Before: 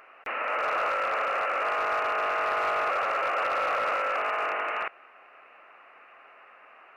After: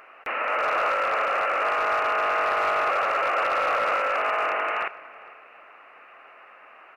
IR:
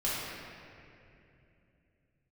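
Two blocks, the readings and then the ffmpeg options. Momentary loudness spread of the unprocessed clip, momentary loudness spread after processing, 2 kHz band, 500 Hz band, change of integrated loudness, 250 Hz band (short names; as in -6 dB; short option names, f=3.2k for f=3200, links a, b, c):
4 LU, 5 LU, +3.5 dB, +3.5 dB, +3.5 dB, +3.5 dB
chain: -filter_complex "[0:a]asplit=2[a][b];[b]adelay=454.8,volume=-19dB,highshelf=f=4k:g=-10.2[c];[a][c]amix=inputs=2:normalize=0,asplit=2[d][e];[1:a]atrim=start_sample=2205[f];[e][f]afir=irnorm=-1:irlink=0,volume=-24.5dB[g];[d][g]amix=inputs=2:normalize=0,volume=3dB"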